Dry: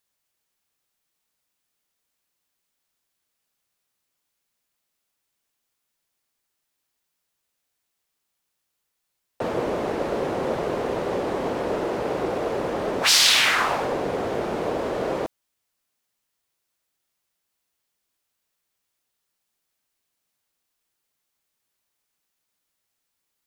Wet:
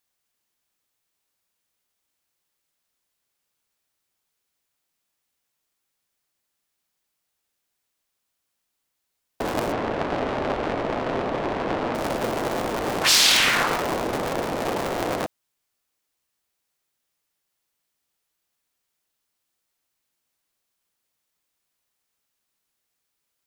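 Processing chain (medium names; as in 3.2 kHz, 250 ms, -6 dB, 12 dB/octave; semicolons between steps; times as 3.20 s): cycle switcher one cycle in 3, inverted; 9.72–11.95 s: low-pass 3.4 kHz 12 dB/octave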